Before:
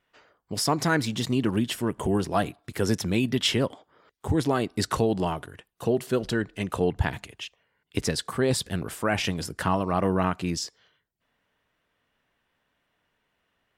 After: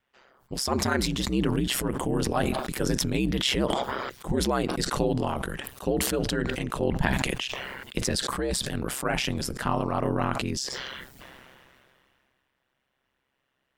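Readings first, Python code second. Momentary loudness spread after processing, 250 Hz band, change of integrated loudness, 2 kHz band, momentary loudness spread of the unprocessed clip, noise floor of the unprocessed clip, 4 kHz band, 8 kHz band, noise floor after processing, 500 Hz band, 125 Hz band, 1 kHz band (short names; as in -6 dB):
7 LU, -1.0 dB, -1.0 dB, +0.5 dB, 9 LU, -76 dBFS, +1.5 dB, +2.5 dB, -77 dBFS, -1.5 dB, -1.5 dB, -0.5 dB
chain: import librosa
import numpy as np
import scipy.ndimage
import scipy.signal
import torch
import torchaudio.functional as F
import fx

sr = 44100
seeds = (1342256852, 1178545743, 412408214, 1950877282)

y = x * np.sin(2.0 * np.pi * 66.0 * np.arange(len(x)) / sr)
y = fx.sustainer(y, sr, db_per_s=24.0)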